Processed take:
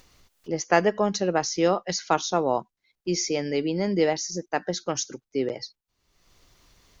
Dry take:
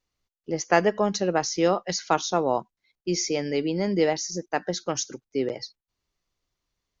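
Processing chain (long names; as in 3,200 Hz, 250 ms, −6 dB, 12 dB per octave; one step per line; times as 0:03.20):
upward compression, threshold −39 dBFS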